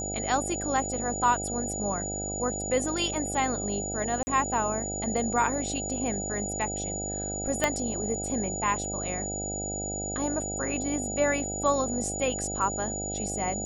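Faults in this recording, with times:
buzz 50 Hz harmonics 16 -36 dBFS
whine 6.9 kHz -33 dBFS
4.23–4.27 s: dropout 40 ms
7.64 s: pop -9 dBFS

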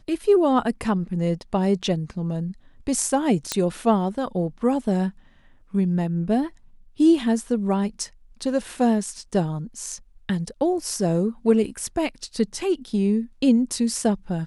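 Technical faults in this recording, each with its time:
3.52 s: pop -7 dBFS

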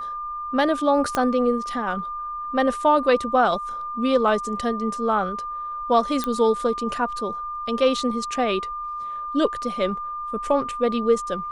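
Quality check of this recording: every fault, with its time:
whine 1.2 kHz -28 dBFS
1.15 s: pop -9 dBFS
6.24 s: pop -11 dBFS

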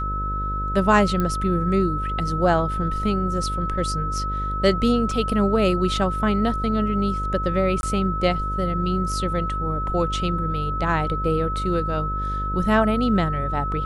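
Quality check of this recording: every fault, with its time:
buzz 50 Hz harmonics 12 -28 dBFS
whine 1.3 kHz -26 dBFS
1.20 s: pop -12 dBFS
5.11 s: dropout 2.3 ms
7.81–7.83 s: dropout 21 ms

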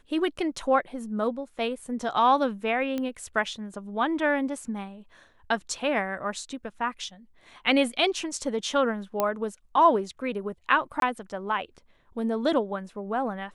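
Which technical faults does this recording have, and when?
2.98 s: pop -18 dBFS
9.20 s: pop -11 dBFS
11.00–11.02 s: dropout 22 ms

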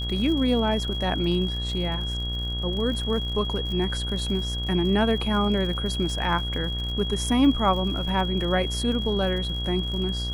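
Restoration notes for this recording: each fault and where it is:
buzz 60 Hz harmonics 32 -30 dBFS
crackle 69 per s -33 dBFS
whine 3.3 kHz -31 dBFS

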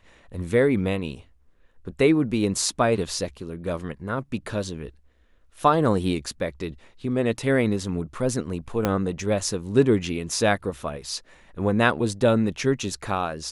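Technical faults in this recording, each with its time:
8.85 s: pop -8 dBFS

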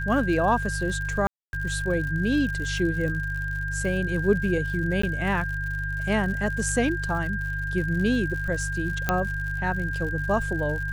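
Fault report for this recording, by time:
crackle 97 per s -33 dBFS
hum 50 Hz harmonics 3 -31 dBFS
whine 1.6 kHz -30 dBFS
1.27–1.53 s: dropout 261 ms
5.02–5.03 s: dropout 14 ms
9.09 s: pop -8 dBFS

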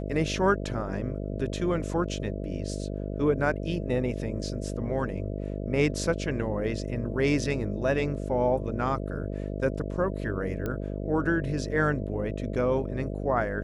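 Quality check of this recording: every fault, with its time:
buzz 50 Hz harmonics 13 -33 dBFS
10.66 s: pop -19 dBFS

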